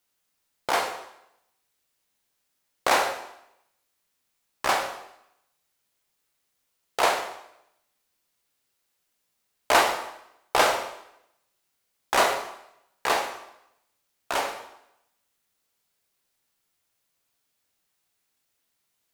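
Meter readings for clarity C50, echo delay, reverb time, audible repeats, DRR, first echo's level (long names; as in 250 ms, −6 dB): 7.0 dB, no echo audible, 0.80 s, no echo audible, 3.5 dB, no echo audible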